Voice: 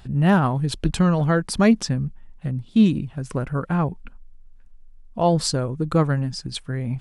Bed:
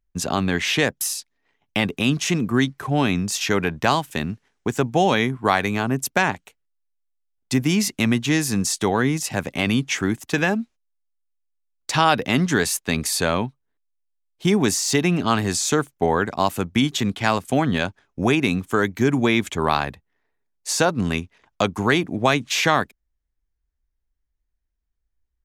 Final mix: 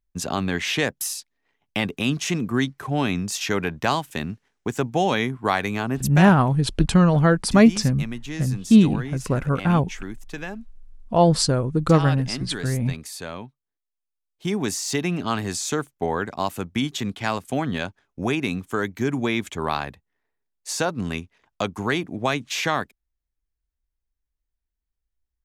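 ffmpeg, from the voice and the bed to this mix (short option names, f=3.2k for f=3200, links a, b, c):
-filter_complex "[0:a]adelay=5950,volume=2.5dB[a];[1:a]volume=5dB,afade=t=out:st=5.94:d=0.58:silence=0.316228,afade=t=in:st=13.71:d=1.14:silence=0.398107[b];[a][b]amix=inputs=2:normalize=0"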